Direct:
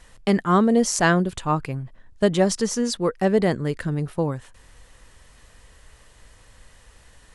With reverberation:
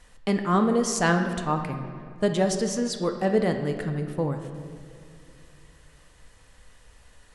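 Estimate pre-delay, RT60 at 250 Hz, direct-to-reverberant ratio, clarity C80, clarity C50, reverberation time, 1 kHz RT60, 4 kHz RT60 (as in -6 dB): 4 ms, 3.1 s, 5.0 dB, 8.5 dB, 7.0 dB, 2.6 s, 2.3 s, 1.5 s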